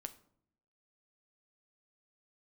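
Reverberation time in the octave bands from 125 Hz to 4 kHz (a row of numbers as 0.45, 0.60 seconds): 0.95, 0.95, 0.70, 0.60, 0.45, 0.35 seconds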